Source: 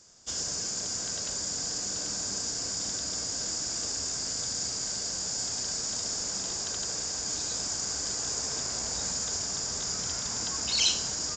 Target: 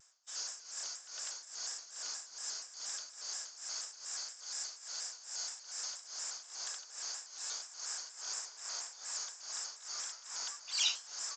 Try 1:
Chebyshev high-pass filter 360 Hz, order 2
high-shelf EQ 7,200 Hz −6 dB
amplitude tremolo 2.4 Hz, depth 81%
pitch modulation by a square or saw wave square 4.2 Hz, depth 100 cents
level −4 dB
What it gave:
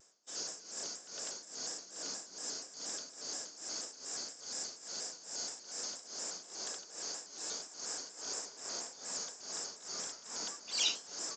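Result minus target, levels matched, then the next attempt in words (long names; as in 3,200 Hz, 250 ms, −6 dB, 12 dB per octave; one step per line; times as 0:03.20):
500 Hz band +11.0 dB
Chebyshev high-pass filter 1,100 Hz, order 2
high-shelf EQ 7,200 Hz −6 dB
amplitude tremolo 2.4 Hz, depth 81%
pitch modulation by a square or saw wave square 4.2 Hz, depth 100 cents
level −4 dB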